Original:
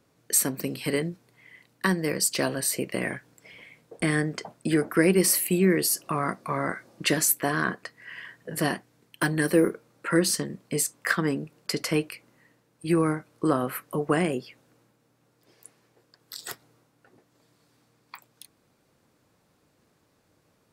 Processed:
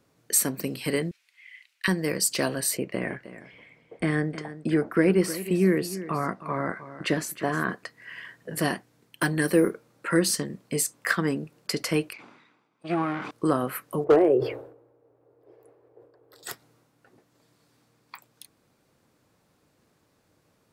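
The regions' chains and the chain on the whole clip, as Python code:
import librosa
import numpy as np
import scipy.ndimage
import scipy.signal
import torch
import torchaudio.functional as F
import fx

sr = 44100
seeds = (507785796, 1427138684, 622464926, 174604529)

y = fx.chain(x, sr, fx.highpass_res(hz=2400.0, q=2.4),
    fx.high_shelf(hz=11000.0, db=-9.0), at=(1.11, 1.88))
y = fx.chain(y, sr, fx.lowpass(hz=1900.0, slope=6),
    fx.quant_float(bits=8),
    fx.echo_single(ms=311, db=-14.0), at=(2.77, 7.69))
y = fx.chain(y, sr, fx.lower_of_two(delay_ms=0.84),
    fx.bandpass_edges(low_hz=270.0, high_hz=3300.0),
    fx.sustainer(db_per_s=53.0), at=(12.13, 13.31))
y = fx.chain(y, sr, fx.curve_eq(hz=(130.0, 200.0, 280.0, 420.0, 1700.0, 6200.0, 15000.0), db=(0, -25, 1, 13, -8, -25, -16)),
    fx.clip_hard(threshold_db=-11.5),
    fx.sustainer(db_per_s=87.0), at=(14.04, 16.43))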